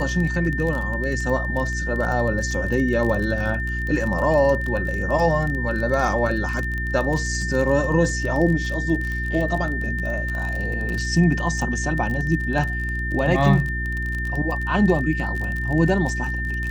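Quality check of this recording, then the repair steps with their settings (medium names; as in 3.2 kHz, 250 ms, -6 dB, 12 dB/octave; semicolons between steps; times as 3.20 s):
crackle 26 per s -25 dBFS
hum 60 Hz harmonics 6 -27 dBFS
whine 1.8 kHz -27 dBFS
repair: de-click; de-hum 60 Hz, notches 6; band-stop 1.8 kHz, Q 30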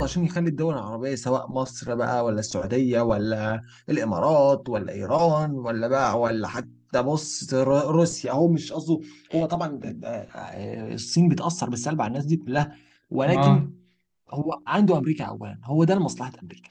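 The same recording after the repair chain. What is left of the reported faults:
nothing left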